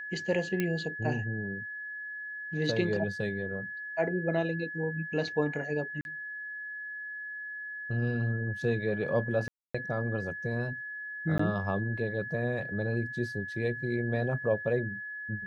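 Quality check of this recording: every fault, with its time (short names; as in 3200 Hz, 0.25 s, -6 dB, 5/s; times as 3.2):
tone 1700 Hz -37 dBFS
0.6 pop -16 dBFS
6.01–6.05 gap 41 ms
9.48–9.74 gap 0.265 s
11.38–11.39 gap 14 ms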